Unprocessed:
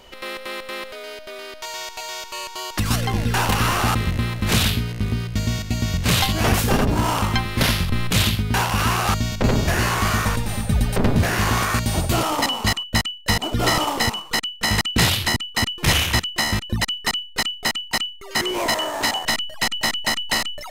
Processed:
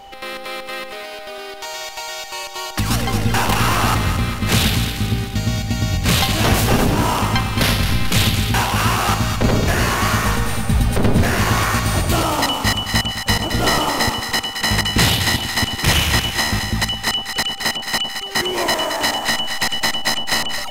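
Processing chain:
echo with a time of its own for lows and highs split 1,000 Hz, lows 106 ms, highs 220 ms, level −7 dB
steady tone 790 Hz −40 dBFS
level +2 dB

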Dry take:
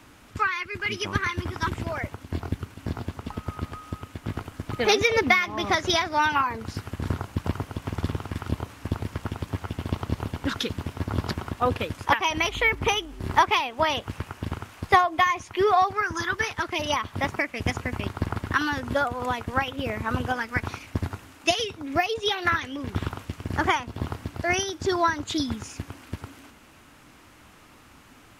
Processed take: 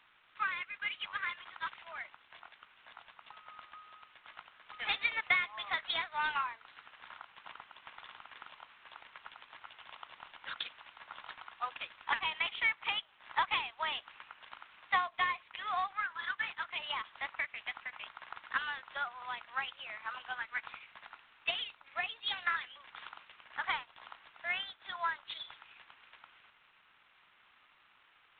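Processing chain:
Bessel high-pass filter 1,300 Hz, order 8
level −7 dB
G.726 24 kbit/s 8,000 Hz

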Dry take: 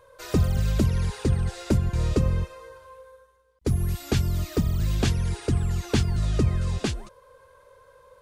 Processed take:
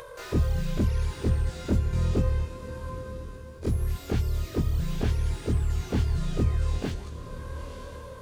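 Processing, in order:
every overlapping window played backwards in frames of 50 ms
upward compression, threshold −32 dBFS
feedback delay with all-pass diffusion 943 ms, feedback 44%, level −14 dB
slew-rate limiting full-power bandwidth 32 Hz

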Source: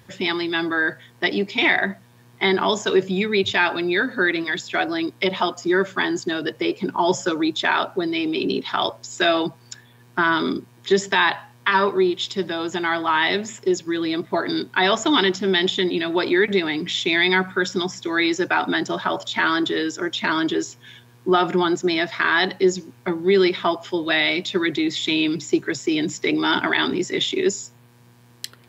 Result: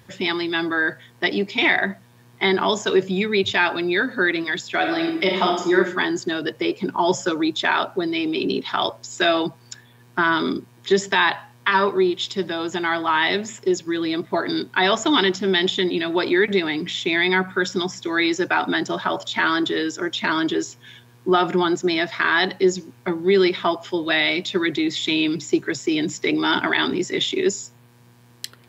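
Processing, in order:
0:04.78–0:05.76: thrown reverb, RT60 0.81 s, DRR 1 dB
0:16.72–0:17.58: dynamic equaliser 4,800 Hz, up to −4 dB, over −32 dBFS, Q 0.77

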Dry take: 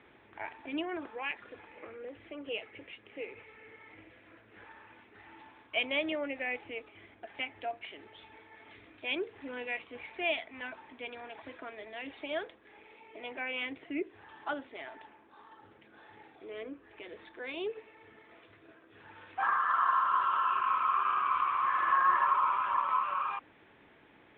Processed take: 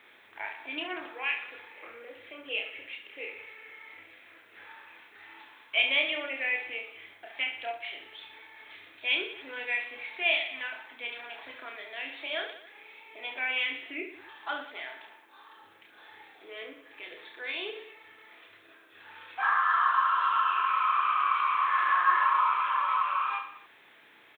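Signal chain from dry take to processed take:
spectral tilt +4.5 dB per octave
notch filter 2,900 Hz, Q 27
reverse bouncing-ball delay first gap 30 ms, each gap 1.3×, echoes 5

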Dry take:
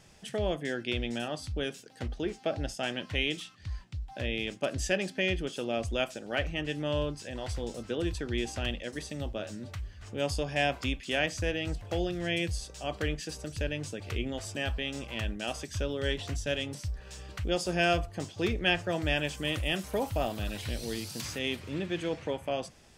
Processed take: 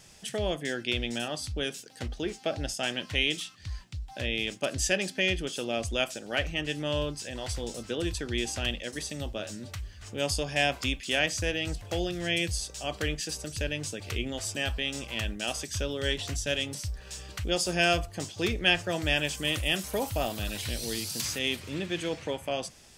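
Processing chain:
high-shelf EQ 3,100 Hz +9.5 dB

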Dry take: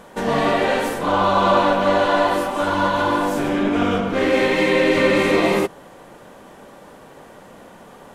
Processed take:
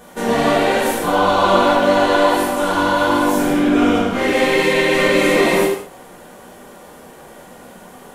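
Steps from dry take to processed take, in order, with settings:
high-shelf EQ 7,700 Hz +11.5 dB
reverb whose tail is shaped and stops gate 230 ms falling, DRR −5.5 dB
level −4 dB

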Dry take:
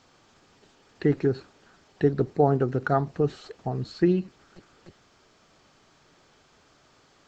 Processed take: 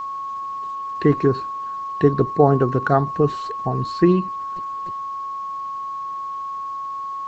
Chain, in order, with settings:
steady tone 1,100 Hz −32 dBFS
level +6 dB

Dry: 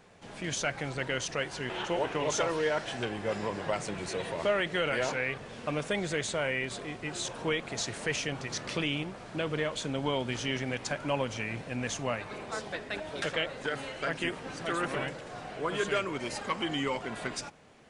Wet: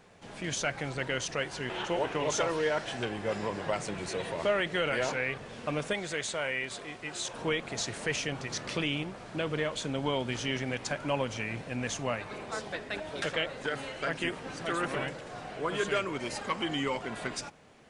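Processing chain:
0:05.93–0:07.34: low-shelf EQ 420 Hz −8 dB

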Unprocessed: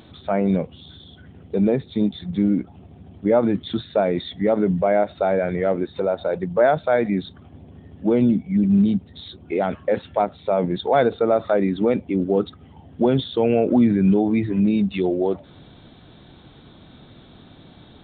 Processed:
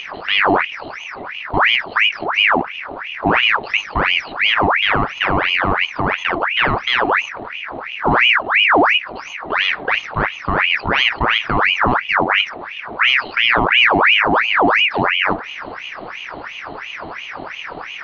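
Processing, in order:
compressor on every frequency bin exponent 0.6
low-shelf EQ 410 Hz +11.5 dB
ring modulator whose carrier an LFO sweeps 1,600 Hz, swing 70%, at 2.9 Hz
level −4 dB

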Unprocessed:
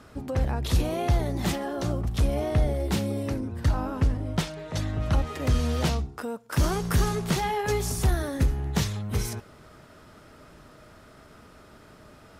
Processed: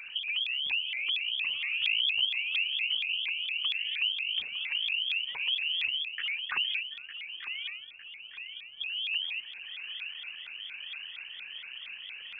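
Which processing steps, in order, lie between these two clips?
spectral envelope exaggerated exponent 2
notch filter 1,500 Hz, Q 7.3
downward compressor 6 to 1, threshold −38 dBFS, peak gain reduction 18.5 dB
0:06.83–0:08.81: stiff-string resonator 200 Hz, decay 0.84 s, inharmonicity 0.008
background noise violet −58 dBFS
0:01.68–0:02.25: double-tracking delay 17 ms −2.5 dB
feedback echo with a low-pass in the loop 906 ms, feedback 57%, low-pass 1,800 Hz, level −9 dB
voice inversion scrambler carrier 3,000 Hz
pitch modulation by a square or saw wave saw up 4.3 Hz, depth 250 cents
level +6 dB

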